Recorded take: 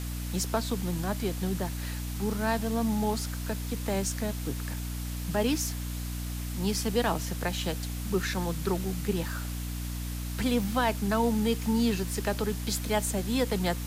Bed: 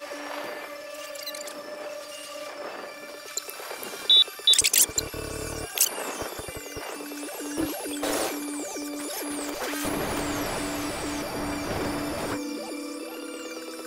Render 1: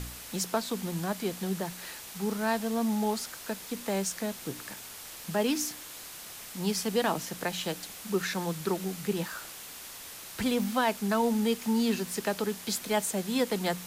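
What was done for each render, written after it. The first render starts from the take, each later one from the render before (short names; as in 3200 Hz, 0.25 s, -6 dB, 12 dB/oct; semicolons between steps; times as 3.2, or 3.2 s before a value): de-hum 60 Hz, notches 5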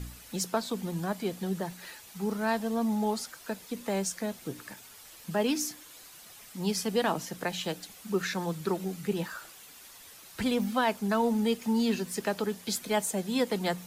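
denoiser 9 dB, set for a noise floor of -45 dBFS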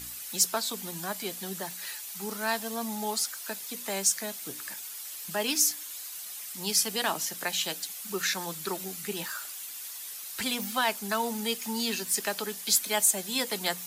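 tilt +3.5 dB/oct; notch 490 Hz, Q 14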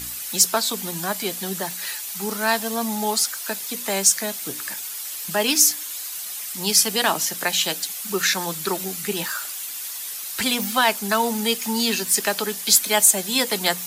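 gain +8.5 dB; limiter -1 dBFS, peak gain reduction 1.5 dB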